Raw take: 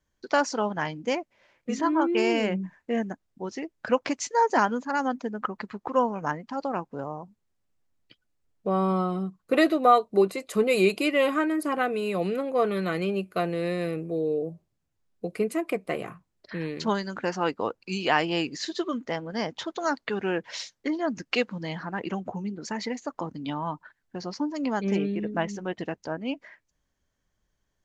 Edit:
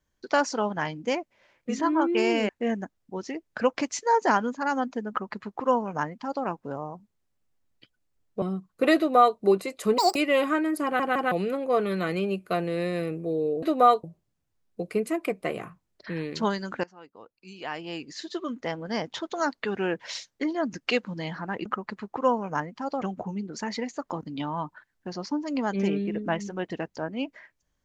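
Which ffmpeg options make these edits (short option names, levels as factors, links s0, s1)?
-filter_complex "[0:a]asplit=13[s0][s1][s2][s3][s4][s5][s6][s7][s8][s9][s10][s11][s12];[s0]atrim=end=2.492[s13];[s1]atrim=start=2.768:end=8.702[s14];[s2]atrim=start=9.118:end=10.684[s15];[s3]atrim=start=10.68:end=11.01,asetpts=PTS-STARTPTS,asetrate=82908,aresample=44100[s16];[s4]atrim=start=11.006:end=11.852[s17];[s5]atrim=start=11.688:end=11.852[s18];[s6]atrim=start=11.688:end=11.852[s19];[s7]atrim=start=12.168:end=14.482[s20];[s8]atrim=start=9.668:end=10.082[s21];[s9]atrim=start=14.478:end=17.28,asetpts=PTS-STARTPTS,afade=t=out:st=2.798:d=0.004:c=hsin:silence=0.0707946[s22];[s10]atrim=start=17.28:end=22.102,asetpts=PTS-STARTPTS,afade=t=in:d=1.93:c=qua:silence=0.0707946[s23];[s11]atrim=start=5.368:end=6.732[s24];[s12]atrim=start=22.098[s25];[s13][s14]acrossfade=d=0.004:c1=hsin:c2=hsin[s26];[s26][s15]acrossfade=d=0.004:c1=hsin:c2=hsin[s27];[s27][s16]acrossfade=d=0.004:c1=hsin:c2=hsin[s28];[s28][s17]acrossfade=d=0.004:c1=hsin:c2=hsin[s29];[s29][s18]acrossfade=d=0.004:c1=hsin:c2=hsin[s30];[s30][s19]acrossfade=d=0.004:c1=hsin:c2=hsin[s31];[s31][s20]acrossfade=d=0.004:c1=hsin:c2=hsin[s32];[s32][s21]acrossfade=d=0.004:c1=hsin:c2=hsin[s33];[s22][s23]concat=n=2:v=0:a=1[s34];[s33][s34]acrossfade=d=0.004:c1=hsin:c2=hsin[s35];[s35][s24]acrossfade=d=0.004:c1=hsin:c2=hsin[s36];[s36][s25]acrossfade=d=0.004:c1=hsin:c2=hsin"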